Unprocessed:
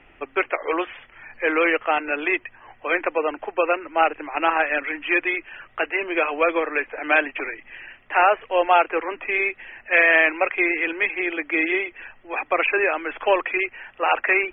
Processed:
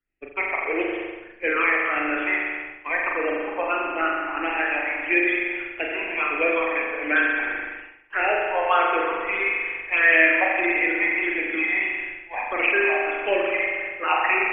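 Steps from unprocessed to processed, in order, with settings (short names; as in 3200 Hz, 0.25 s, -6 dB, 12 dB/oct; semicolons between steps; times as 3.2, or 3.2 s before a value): phaser stages 8, 1.6 Hz, lowest notch 380–1200 Hz; spring tank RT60 1.9 s, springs 40 ms, chirp 65 ms, DRR -2 dB; expander -29 dBFS; gain -1 dB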